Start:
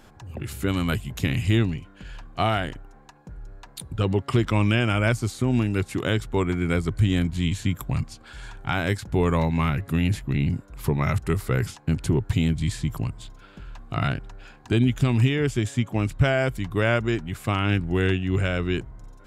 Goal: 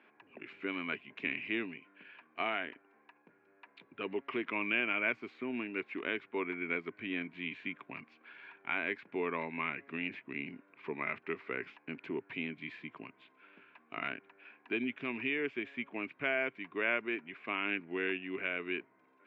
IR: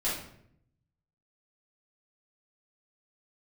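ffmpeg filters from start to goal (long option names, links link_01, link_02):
-af "highpass=frequency=300:width=0.5412,highpass=frequency=300:width=1.3066,equalizer=frequency=340:width_type=q:width=4:gain=-4,equalizer=frequency=530:width_type=q:width=4:gain=-9,equalizer=frequency=790:width_type=q:width=4:gain=-9,equalizer=frequency=1300:width_type=q:width=4:gain=-5,equalizer=frequency=2400:width_type=q:width=4:gain=9,lowpass=frequency=2500:width=0.5412,lowpass=frequency=2500:width=1.3066,volume=-6.5dB"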